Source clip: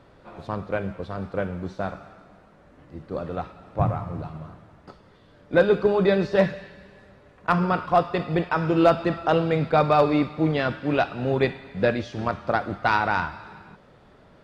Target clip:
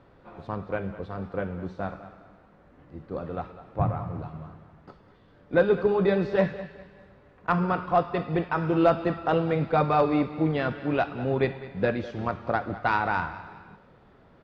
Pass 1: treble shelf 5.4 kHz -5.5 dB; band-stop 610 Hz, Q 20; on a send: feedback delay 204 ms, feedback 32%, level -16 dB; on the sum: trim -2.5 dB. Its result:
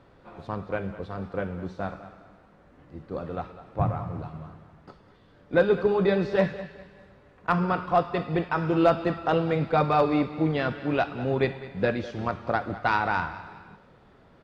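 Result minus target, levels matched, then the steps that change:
8 kHz band +5.5 dB
change: treble shelf 5.4 kHz -15 dB

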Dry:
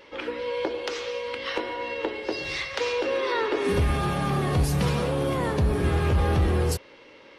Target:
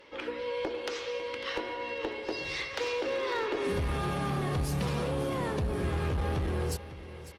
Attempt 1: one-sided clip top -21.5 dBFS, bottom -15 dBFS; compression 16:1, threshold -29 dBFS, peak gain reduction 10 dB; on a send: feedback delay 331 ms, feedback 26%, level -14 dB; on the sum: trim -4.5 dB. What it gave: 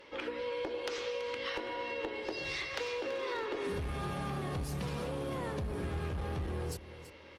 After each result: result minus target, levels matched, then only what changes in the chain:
echo 219 ms early; compression: peak gain reduction +6.5 dB
change: feedback delay 550 ms, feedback 26%, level -14 dB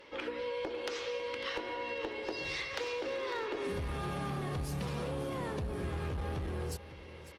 compression: peak gain reduction +6.5 dB
change: compression 16:1, threshold -22 dBFS, peak gain reduction 3.5 dB

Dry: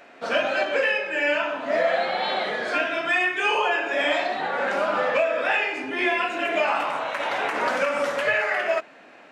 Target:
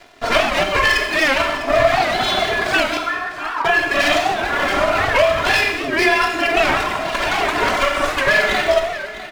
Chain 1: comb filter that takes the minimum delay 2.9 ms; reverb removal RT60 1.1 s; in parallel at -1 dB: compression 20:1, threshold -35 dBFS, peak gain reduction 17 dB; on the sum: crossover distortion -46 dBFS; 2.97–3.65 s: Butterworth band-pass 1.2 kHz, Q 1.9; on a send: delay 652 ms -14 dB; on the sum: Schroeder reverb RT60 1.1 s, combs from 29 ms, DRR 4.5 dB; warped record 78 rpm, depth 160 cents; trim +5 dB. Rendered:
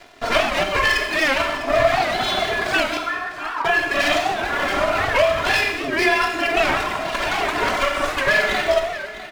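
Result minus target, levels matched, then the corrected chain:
compression: peak gain reduction +10 dB
comb filter that takes the minimum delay 2.9 ms; reverb removal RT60 1.1 s; in parallel at -1 dB: compression 20:1, threshold -24.5 dBFS, peak gain reduction 7 dB; on the sum: crossover distortion -46 dBFS; 2.97–3.65 s: Butterworth band-pass 1.2 kHz, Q 1.9; on a send: delay 652 ms -14 dB; on the sum: Schroeder reverb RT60 1.1 s, combs from 29 ms, DRR 4.5 dB; warped record 78 rpm, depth 160 cents; trim +5 dB

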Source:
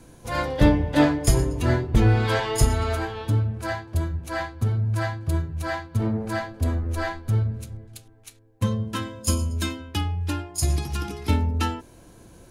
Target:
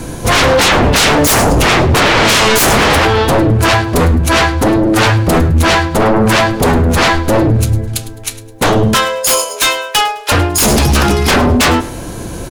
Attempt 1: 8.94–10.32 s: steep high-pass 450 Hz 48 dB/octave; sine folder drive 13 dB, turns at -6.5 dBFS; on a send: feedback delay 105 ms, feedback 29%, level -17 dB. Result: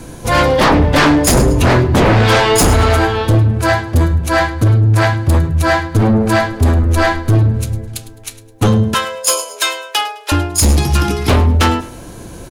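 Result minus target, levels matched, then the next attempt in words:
sine folder: distortion -14 dB
8.94–10.32 s: steep high-pass 450 Hz 48 dB/octave; sine folder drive 21 dB, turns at -6.5 dBFS; on a send: feedback delay 105 ms, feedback 29%, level -17 dB

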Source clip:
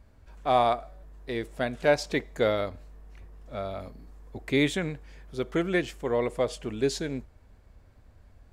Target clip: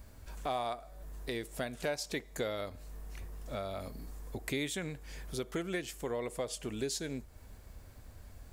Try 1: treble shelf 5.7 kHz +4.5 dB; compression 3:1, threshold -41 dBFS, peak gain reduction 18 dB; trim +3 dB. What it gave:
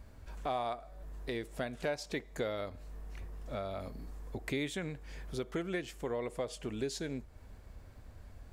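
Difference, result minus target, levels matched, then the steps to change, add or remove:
8 kHz band -6.0 dB
change: treble shelf 5.7 kHz +16.5 dB

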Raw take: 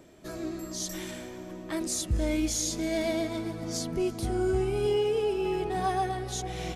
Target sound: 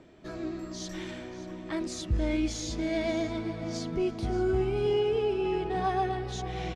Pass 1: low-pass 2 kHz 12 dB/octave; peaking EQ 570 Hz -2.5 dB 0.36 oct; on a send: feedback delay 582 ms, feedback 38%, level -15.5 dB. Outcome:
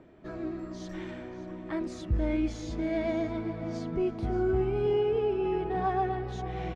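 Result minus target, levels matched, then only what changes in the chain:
4 kHz band -8.5 dB
change: low-pass 4.1 kHz 12 dB/octave

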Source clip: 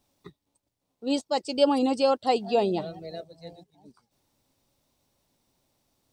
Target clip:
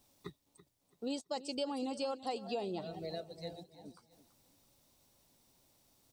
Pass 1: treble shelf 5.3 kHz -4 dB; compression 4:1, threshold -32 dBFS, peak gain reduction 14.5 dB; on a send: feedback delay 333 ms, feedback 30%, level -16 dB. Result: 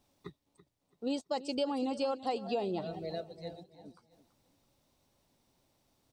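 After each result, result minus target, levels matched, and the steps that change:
8 kHz band -6.5 dB; compression: peak gain reduction -4.5 dB
change: treble shelf 5.3 kHz +6.5 dB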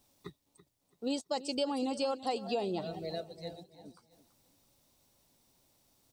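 compression: peak gain reduction -4.5 dB
change: compression 4:1, threshold -38 dBFS, peak gain reduction 19 dB

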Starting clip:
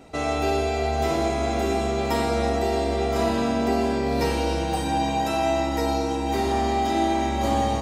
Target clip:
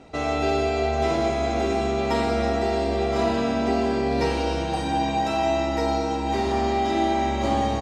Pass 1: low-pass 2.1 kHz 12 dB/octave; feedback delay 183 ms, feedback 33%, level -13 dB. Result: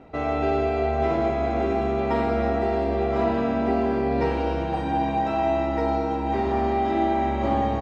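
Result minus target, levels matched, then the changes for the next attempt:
8 kHz band -17.0 dB
change: low-pass 6.2 kHz 12 dB/octave

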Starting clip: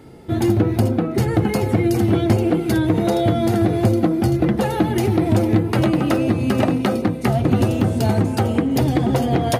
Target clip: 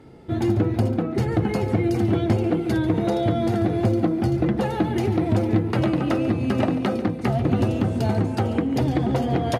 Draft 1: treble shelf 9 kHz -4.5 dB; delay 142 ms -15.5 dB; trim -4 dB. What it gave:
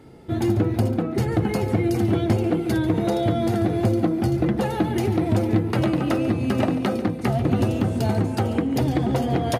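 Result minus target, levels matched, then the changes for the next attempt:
8 kHz band +4.0 dB
change: treble shelf 9 kHz -15 dB

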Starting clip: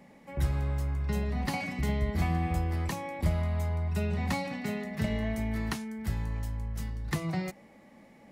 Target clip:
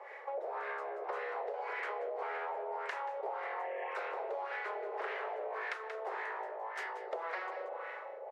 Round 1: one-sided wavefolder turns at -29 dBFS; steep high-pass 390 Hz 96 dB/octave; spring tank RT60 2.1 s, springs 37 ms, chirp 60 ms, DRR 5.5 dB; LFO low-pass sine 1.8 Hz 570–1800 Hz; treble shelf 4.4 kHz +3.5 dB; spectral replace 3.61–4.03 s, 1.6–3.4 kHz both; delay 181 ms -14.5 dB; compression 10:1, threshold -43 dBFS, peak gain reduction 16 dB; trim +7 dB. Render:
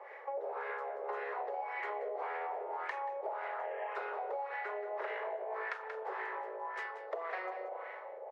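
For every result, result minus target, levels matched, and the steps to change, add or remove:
one-sided wavefolder: distortion -14 dB; 4 kHz band -4.0 dB
change: one-sided wavefolder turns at -39 dBFS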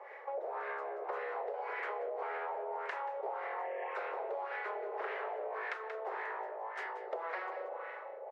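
4 kHz band -3.0 dB
change: treble shelf 4.4 kHz +15.5 dB

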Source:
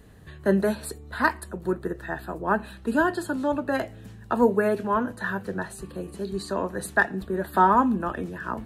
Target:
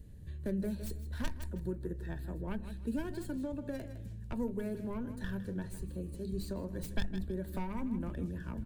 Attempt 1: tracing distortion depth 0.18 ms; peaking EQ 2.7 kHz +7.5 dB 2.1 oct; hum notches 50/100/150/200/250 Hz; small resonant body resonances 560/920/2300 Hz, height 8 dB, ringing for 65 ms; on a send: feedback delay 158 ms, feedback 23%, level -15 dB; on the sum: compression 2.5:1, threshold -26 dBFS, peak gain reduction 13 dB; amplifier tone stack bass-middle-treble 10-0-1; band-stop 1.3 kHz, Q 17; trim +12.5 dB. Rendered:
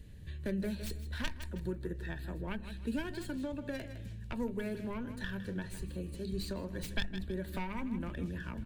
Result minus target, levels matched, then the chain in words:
2 kHz band +6.0 dB
tracing distortion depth 0.18 ms; peaking EQ 2.7 kHz -3 dB 2.1 oct; hum notches 50/100/150/200/250 Hz; small resonant body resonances 560/920/2300 Hz, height 8 dB, ringing for 65 ms; on a send: feedback delay 158 ms, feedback 23%, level -15 dB; on the sum: compression 2.5:1, threshold -26 dBFS, peak gain reduction 11 dB; amplifier tone stack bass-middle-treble 10-0-1; band-stop 1.3 kHz, Q 17; trim +12.5 dB

